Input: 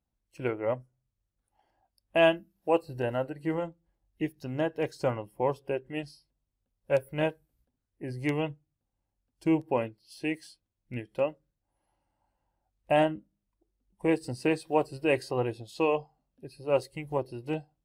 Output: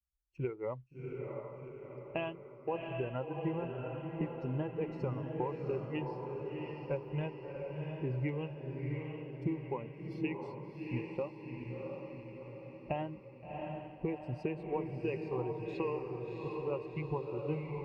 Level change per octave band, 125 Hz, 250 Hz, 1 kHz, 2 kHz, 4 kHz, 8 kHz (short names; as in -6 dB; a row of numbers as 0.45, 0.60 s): -0.5 dB, -6.5 dB, -9.5 dB, -11.5 dB, -14.0 dB, n/a